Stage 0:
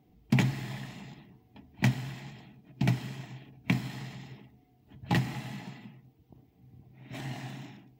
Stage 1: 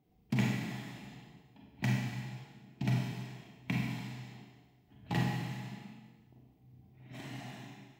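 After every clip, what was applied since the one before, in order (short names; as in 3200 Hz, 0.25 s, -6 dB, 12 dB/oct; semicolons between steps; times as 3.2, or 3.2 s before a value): Schroeder reverb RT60 1.2 s, combs from 32 ms, DRR -2.5 dB; gain -8.5 dB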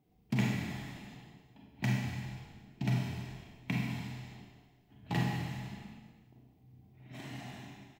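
frequency-shifting echo 0.201 s, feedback 32%, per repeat -40 Hz, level -16 dB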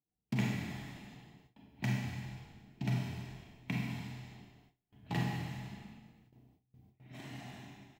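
gate with hold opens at -51 dBFS; gain -2.5 dB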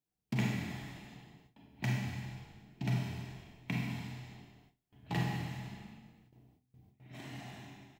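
notches 50/100/150/200/250 Hz; gain +1 dB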